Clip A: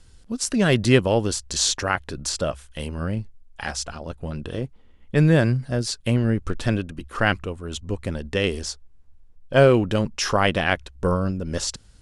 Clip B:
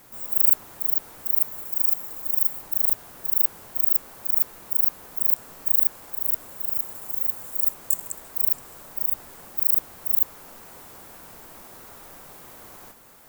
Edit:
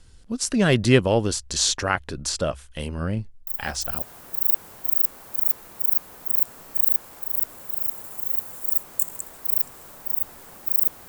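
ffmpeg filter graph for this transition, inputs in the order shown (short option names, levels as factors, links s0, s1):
-filter_complex "[1:a]asplit=2[s0][s1];[0:a]apad=whole_dur=11.08,atrim=end=11.08,atrim=end=4.022[s2];[s1]atrim=start=2.928:end=9.99[s3];[s0]atrim=start=2.38:end=2.93,asetpts=PTS-STARTPTS,volume=0.398,afade=t=in:d=0.004:c=hsin,afade=t=out:st=0.546:d=0.004:c=hsin,adelay=3470[s4];[s2][s3]acrossfade=d=0.004:c1=hsin:c2=hsin[s5];[s5][s4]amix=inputs=2:normalize=0"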